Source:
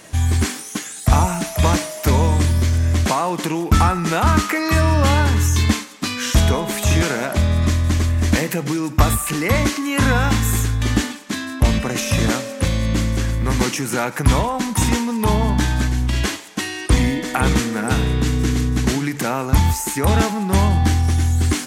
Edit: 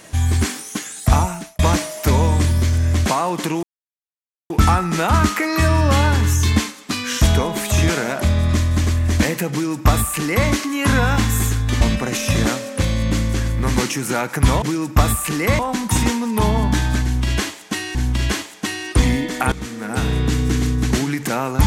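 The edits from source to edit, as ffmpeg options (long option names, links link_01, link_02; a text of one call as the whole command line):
ffmpeg -i in.wav -filter_complex "[0:a]asplit=8[link_01][link_02][link_03][link_04][link_05][link_06][link_07][link_08];[link_01]atrim=end=1.59,asetpts=PTS-STARTPTS,afade=type=out:start_time=1.13:duration=0.46[link_09];[link_02]atrim=start=1.59:end=3.63,asetpts=PTS-STARTPTS,afade=type=in:duration=0.004:curve=hsin,afade=type=out:start_time=2.036:duration=0.004:curve=hsin,apad=pad_dur=0.87[link_10];[link_03]atrim=start=3.63:end=10.942,asetpts=PTS-STARTPTS,afade=type=in:duration=0.004:curve=hsin[link_11];[link_04]atrim=start=11.638:end=14.452[link_12];[link_05]atrim=start=8.638:end=9.612[link_13];[link_06]atrim=start=14.448:end=16.812[link_14];[link_07]atrim=start=15.888:end=17.46,asetpts=PTS-STARTPTS,afade=type=out:start_time=1.568:duration=0.004:curve=hsin:silence=0.105925[link_15];[link_08]atrim=start=17.46,asetpts=PTS-STARTPTS,afade=type=in:duration=0.65:silence=0.105925[link_16];[link_09][link_10][link_11]concat=n=3:v=0:a=1[link_17];[link_17][link_12]acrossfade=duration=0.004:curve1=hsin:curve2=hsin[link_18];[link_18][link_13]acrossfade=duration=0.004:curve1=hsin:curve2=hsin[link_19];[link_19][link_14]acrossfade=duration=0.004:curve1=hsin:curve2=hsin[link_20];[link_15][link_16]concat=n=2:v=0:a=1[link_21];[link_20][link_21]acrossfade=duration=0.004:curve1=hsin:curve2=hsin" out.wav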